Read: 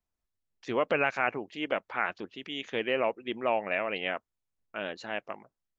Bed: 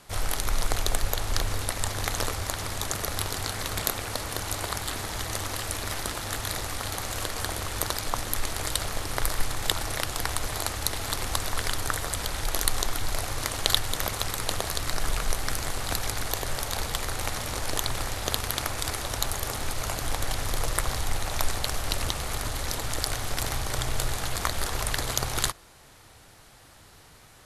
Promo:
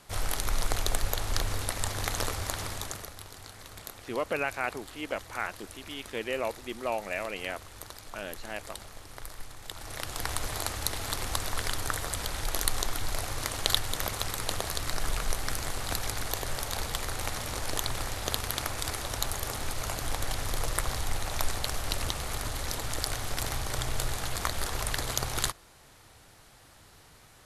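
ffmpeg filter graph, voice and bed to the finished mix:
ffmpeg -i stem1.wav -i stem2.wav -filter_complex "[0:a]adelay=3400,volume=-3.5dB[link_01];[1:a]volume=10dB,afade=type=out:start_time=2.61:duration=0.53:silence=0.223872,afade=type=in:start_time=9.71:duration=0.62:silence=0.237137[link_02];[link_01][link_02]amix=inputs=2:normalize=0" out.wav

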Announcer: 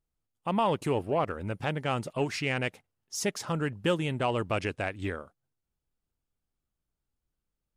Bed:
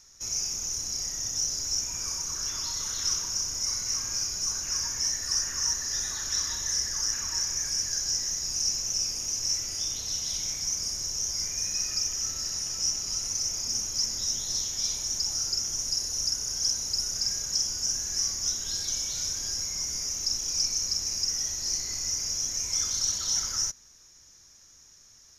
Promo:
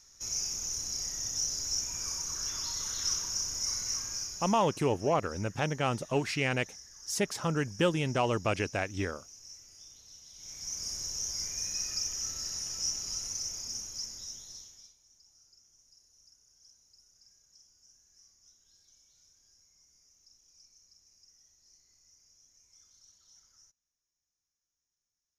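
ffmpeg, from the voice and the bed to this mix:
ffmpeg -i stem1.wav -i stem2.wav -filter_complex "[0:a]adelay=3950,volume=0dB[link_01];[1:a]volume=13dB,afade=type=out:start_time=3.84:duration=0.95:silence=0.125893,afade=type=in:start_time=10.35:duration=0.58:silence=0.149624,afade=type=out:start_time=13.05:duration=1.89:silence=0.0375837[link_02];[link_01][link_02]amix=inputs=2:normalize=0" out.wav

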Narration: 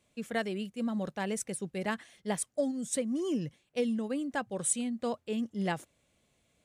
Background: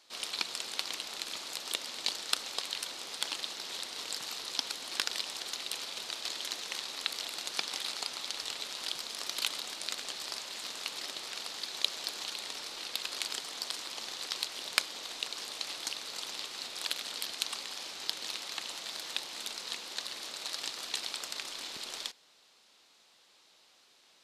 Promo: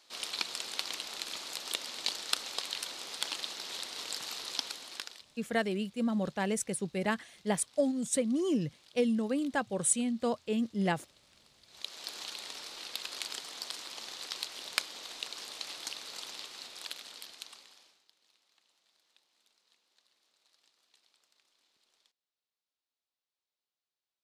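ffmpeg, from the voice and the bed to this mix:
ffmpeg -i stem1.wav -i stem2.wav -filter_complex "[0:a]adelay=5200,volume=2dB[link_01];[1:a]volume=20.5dB,afade=type=out:start_time=4.52:duration=0.73:silence=0.0668344,afade=type=in:start_time=11.66:duration=0.5:silence=0.0891251,afade=type=out:start_time=16.16:duration=1.88:silence=0.0334965[link_02];[link_01][link_02]amix=inputs=2:normalize=0" out.wav

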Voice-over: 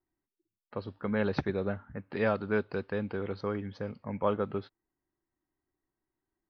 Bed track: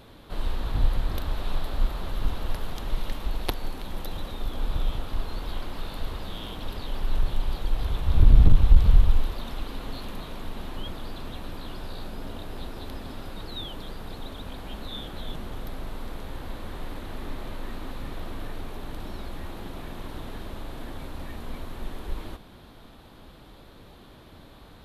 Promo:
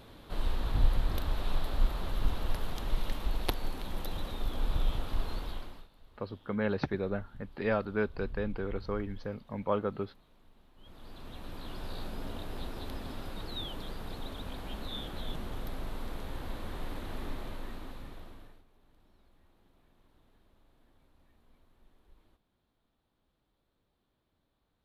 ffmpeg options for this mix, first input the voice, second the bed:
ffmpeg -i stem1.wav -i stem2.wav -filter_complex "[0:a]adelay=5450,volume=-1.5dB[link_01];[1:a]volume=21dB,afade=type=out:start_time=5.32:duration=0.56:silence=0.0630957,afade=type=in:start_time=10.76:duration=1.19:silence=0.0630957,afade=type=out:start_time=17.2:duration=1.44:silence=0.0473151[link_02];[link_01][link_02]amix=inputs=2:normalize=0" out.wav

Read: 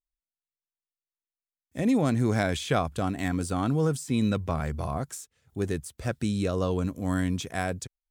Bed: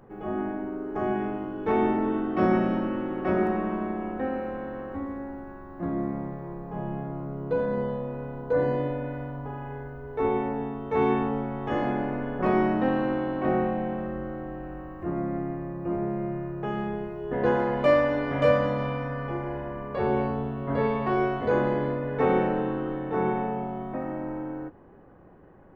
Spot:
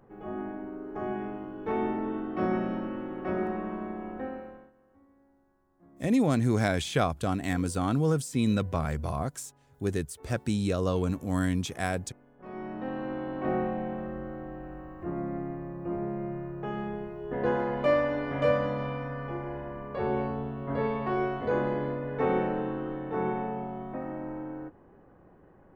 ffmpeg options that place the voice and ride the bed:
ffmpeg -i stem1.wav -i stem2.wav -filter_complex "[0:a]adelay=4250,volume=-0.5dB[link_01];[1:a]volume=18dB,afade=type=out:start_time=4.2:duration=0.52:silence=0.0794328,afade=type=in:start_time=12.37:duration=1.17:silence=0.0630957[link_02];[link_01][link_02]amix=inputs=2:normalize=0" out.wav

